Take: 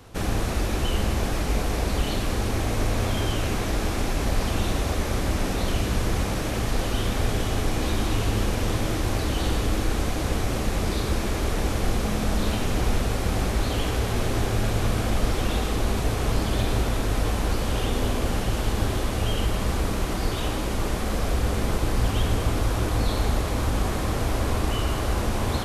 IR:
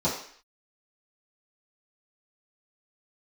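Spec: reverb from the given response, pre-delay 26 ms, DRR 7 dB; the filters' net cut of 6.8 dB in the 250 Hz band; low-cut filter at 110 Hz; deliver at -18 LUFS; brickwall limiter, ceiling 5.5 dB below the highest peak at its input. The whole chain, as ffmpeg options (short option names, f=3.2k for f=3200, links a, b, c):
-filter_complex "[0:a]highpass=110,equalizer=f=250:t=o:g=-9,alimiter=limit=-21.5dB:level=0:latency=1,asplit=2[a][b];[1:a]atrim=start_sample=2205,adelay=26[c];[b][c]afir=irnorm=-1:irlink=0,volume=-18.5dB[d];[a][d]amix=inputs=2:normalize=0,volume=12dB"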